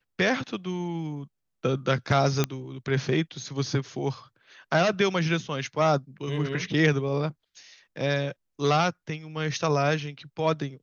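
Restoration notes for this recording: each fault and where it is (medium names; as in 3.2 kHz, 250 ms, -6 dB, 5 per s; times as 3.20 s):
2.44 s: pop -9 dBFS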